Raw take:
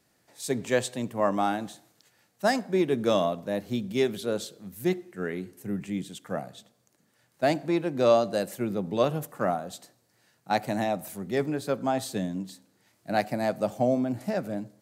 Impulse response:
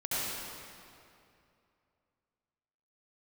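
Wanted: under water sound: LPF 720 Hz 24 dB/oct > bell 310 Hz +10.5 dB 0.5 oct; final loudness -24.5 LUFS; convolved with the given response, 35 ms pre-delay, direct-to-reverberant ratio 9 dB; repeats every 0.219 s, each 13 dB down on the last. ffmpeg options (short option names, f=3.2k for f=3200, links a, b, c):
-filter_complex "[0:a]aecho=1:1:219|438|657:0.224|0.0493|0.0108,asplit=2[a][b];[1:a]atrim=start_sample=2205,adelay=35[c];[b][c]afir=irnorm=-1:irlink=0,volume=-17dB[d];[a][d]amix=inputs=2:normalize=0,lowpass=f=720:w=0.5412,lowpass=f=720:w=1.3066,equalizer=f=310:t=o:w=0.5:g=10.5,volume=0.5dB"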